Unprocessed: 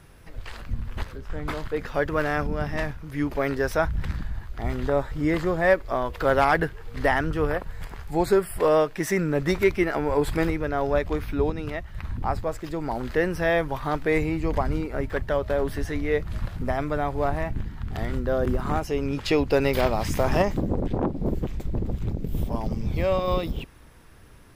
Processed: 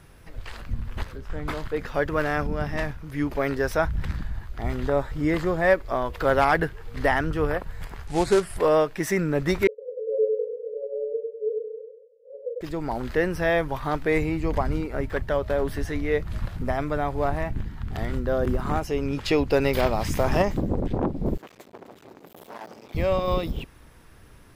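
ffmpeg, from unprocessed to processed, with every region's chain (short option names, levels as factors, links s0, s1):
-filter_complex "[0:a]asettb=1/sr,asplit=3[s0][s1][s2];[s0]atrim=end=8.074[s3];[s1]atrim=start=8.07:end=8.57,asetpts=PTS-STARTPTS,afade=t=in:d=0.004:c=qsin,afade=t=out:st=0.496:d=0.004:c=qsin,acrusher=bits=3:mode=log:mix=0:aa=0.000001,lowpass=f=9800:w=0.5412,lowpass=f=9800:w=1.3066[s4];[s2]atrim=start=8.566[s5];[s3][s4]acrossfade=d=0.004:c1=hsin:c2=qsin[s6];[s6][s5]acrossfade=d=0.004:c1=qsin:c2=hsin,asettb=1/sr,asplit=3[s7][s8][s9];[s7]atrim=end=9.674[s10];[s8]atrim=start=9.67:end=12.61,asetpts=PTS-STARTPTS,afade=t=in:d=0.004:c=qsin,afade=t=out:st=2.936:d=0.004:c=qsin,asuperpass=centerf=490:order=20:qfactor=3.7,asplit=2[s11][s12];[s12]adelay=28,volume=0.335[s13];[s11][s13]amix=inputs=2:normalize=0,atrim=end_sample=129654,aecho=1:1:99|198|297|396|495|594:0.708|0.326|0.15|0.0689|0.0317|0.0146,atrim=end_sample=129654[s14];[s9]atrim=start=12.606[s15];[s10][s14]acrossfade=d=0.004:c1=hsin:c2=qsin[s16];[s16][s15]acrossfade=d=0.004:c1=qsin:c2=hsin,asettb=1/sr,asplit=3[s17][s18][s19];[s17]atrim=end=21.374[s20];[s18]atrim=start=21.37:end=22.95,asetpts=PTS-STARTPTS,afade=t=in:d=0.004:c=qsin,afade=t=out:st=1.576:d=0.004:c=qsin,asoftclip=type=hard:threshold=0.0282,highpass=460[s21];[s19]atrim=start=22.946[s22];[s20][s21]acrossfade=d=0.004:c1=hsin:c2=qsin[s23];[s23][s22]acrossfade=d=0.004:c1=qsin:c2=hsin"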